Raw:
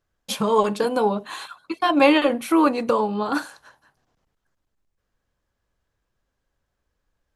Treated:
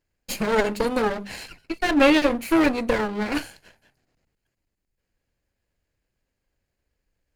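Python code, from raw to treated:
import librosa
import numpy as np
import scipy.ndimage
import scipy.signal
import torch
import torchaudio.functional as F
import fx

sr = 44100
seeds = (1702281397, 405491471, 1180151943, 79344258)

y = fx.lower_of_two(x, sr, delay_ms=0.43)
y = fx.hum_notches(y, sr, base_hz=50, count=4)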